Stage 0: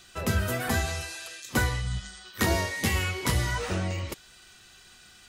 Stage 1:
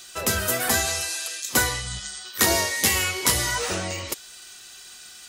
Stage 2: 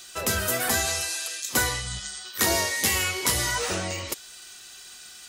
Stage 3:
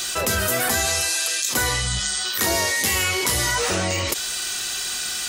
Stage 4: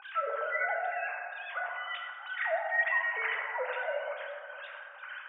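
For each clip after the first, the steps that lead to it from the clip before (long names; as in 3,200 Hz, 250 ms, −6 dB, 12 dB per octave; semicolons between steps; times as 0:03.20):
bass and treble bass −10 dB, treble +9 dB; level +4.5 dB
in parallel at −3 dB: brickwall limiter −15 dBFS, peak gain reduction 10 dB; on the sum: bit reduction 11 bits; level −5.5 dB
envelope flattener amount 70%
three sine waves on the formant tracks; LFO wah 2.2 Hz 470–1,800 Hz, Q 2.1; dense smooth reverb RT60 2.3 s, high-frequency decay 0.3×, DRR 0 dB; level −8 dB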